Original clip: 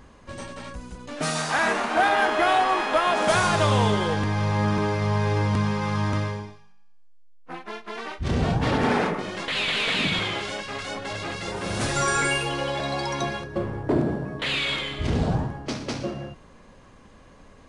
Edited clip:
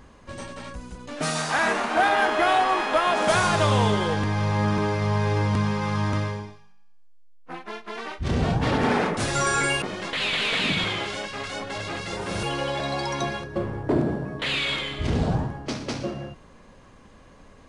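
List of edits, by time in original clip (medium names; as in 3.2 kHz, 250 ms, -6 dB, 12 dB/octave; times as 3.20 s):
11.78–12.43 s: move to 9.17 s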